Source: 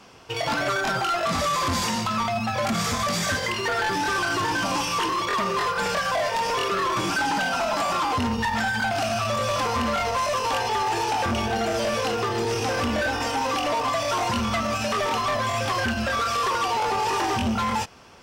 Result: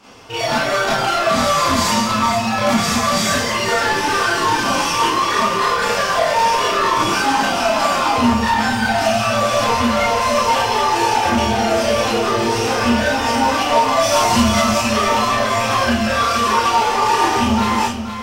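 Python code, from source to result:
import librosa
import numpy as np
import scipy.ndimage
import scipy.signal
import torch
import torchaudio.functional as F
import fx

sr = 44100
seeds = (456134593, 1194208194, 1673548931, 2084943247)

y = fx.bass_treble(x, sr, bass_db=3, treble_db=7, at=(13.99, 14.78))
y = y + 10.0 ** (-9.0 / 20.0) * np.pad(y, (int(473 * sr / 1000.0), 0))[:len(y)]
y = fx.rev_schroeder(y, sr, rt60_s=0.32, comb_ms=26, drr_db=-8.0)
y = y * 10.0 ** (-1.0 / 20.0)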